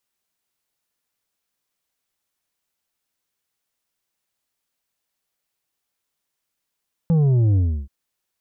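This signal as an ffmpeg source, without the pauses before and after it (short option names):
-f lavfi -i "aevalsrc='0.188*clip((0.78-t)/0.32,0,1)*tanh(2.11*sin(2*PI*170*0.78/log(65/170)*(exp(log(65/170)*t/0.78)-1)))/tanh(2.11)':d=0.78:s=44100"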